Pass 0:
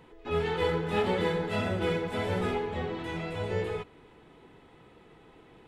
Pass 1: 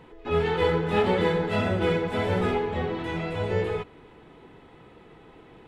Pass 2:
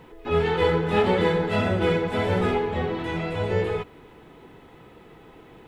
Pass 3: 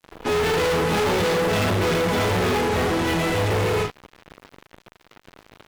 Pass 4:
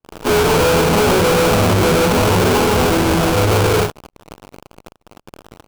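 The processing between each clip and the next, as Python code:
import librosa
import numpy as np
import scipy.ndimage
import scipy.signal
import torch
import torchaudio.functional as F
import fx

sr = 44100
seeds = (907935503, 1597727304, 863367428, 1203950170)

y1 = fx.high_shelf(x, sr, hz=5200.0, db=-7.0)
y1 = F.gain(torch.from_numpy(y1), 5.0).numpy()
y2 = fx.quant_dither(y1, sr, seeds[0], bits=12, dither='none')
y2 = F.gain(torch.from_numpy(y2), 2.0).numpy()
y3 = fx.room_early_taps(y2, sr, ms=(40, 78), db=(-6.0, -11.0))
y3 = fx.fuzz(y3, sr, gain_db=35.0, gate_db=-41.0)
y3 = F.gain(torch.from_numpy(y3), -6.5).numpy()
y4 = fx.sample_hold(y3, sr, seeds[1], rate_hz=1900.0, jitter_pct=20)
y4 = F.gain(torch.from_numpy(y4), 7.5).numpy()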